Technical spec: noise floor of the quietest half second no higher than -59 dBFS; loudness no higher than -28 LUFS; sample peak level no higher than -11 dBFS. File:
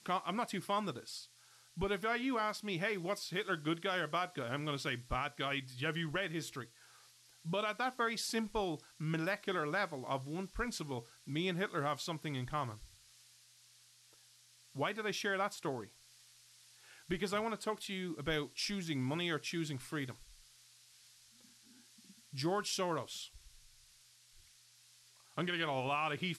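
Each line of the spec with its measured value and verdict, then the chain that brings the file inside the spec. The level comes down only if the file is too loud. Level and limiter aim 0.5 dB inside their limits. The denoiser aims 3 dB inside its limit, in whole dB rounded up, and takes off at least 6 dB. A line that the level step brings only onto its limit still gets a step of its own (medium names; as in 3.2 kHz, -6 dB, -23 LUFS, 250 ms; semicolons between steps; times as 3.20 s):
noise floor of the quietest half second -65 dBFS: pass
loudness -38.0 LUFS: pass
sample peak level -24.0 dBFS: pass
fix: none needed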